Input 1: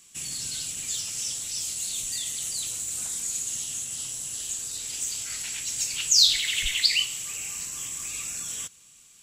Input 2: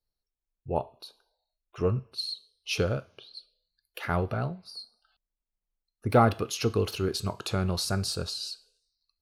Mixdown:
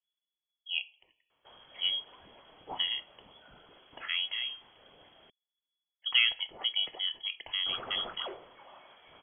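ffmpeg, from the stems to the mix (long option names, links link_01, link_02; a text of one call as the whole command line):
ffmpeg -i stem1.wav -i stem2.wav -filter_complex "[0:a]volume=24.5dB,asoftclip=hard,volume=-24.5dB,adelay=1300,volume=-9.5dB,asplit=3[link_01][link_02][link_03];[link_01]atrim=end=5.3,asetpts=PTS-STARTPTS,afade=type=out:start_time=5.296:duration=0.004:curve=hsin[link_04];[link_02]atrim=start=5.3:end=7.66,asetpts=PTS-STARTPTS,volume=0[link_05];[link_03]atrim=start=7.66,asetpts=PTS-STARTPTS,afade=type=in:duration=0.004:curve=hsin[link_06];[link_04][link_05][link_06]concat=n=3:v=0:a=1[link_07];[1:a]volume=-5.5dB[link_08];[link_07][link_08]amix=inputs=2:normalize=0,lowpass=frequency=2900:width_type=q:width=0.5098,lowpass=frequency=2900:width_type=q:width=0.6013,lowpass=frequency=2900:width_type=q:width=0.9,lowpass=frequency=2900:width_type=q:width=2.563,afreqshift=-3400" out.wav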